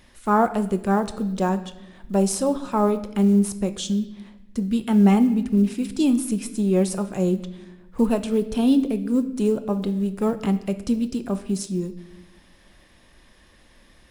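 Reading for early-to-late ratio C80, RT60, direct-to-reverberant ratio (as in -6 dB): 16.0 dB, 1.0 s, 9.0 dB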